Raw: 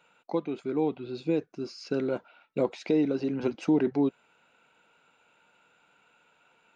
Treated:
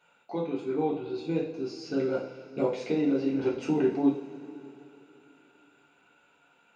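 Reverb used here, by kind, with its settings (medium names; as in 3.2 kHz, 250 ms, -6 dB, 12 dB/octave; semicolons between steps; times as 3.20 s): two-slope reverb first 0.43 s, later 3.3 s, from -18 dB, DRR -5 dB; trim -6 dB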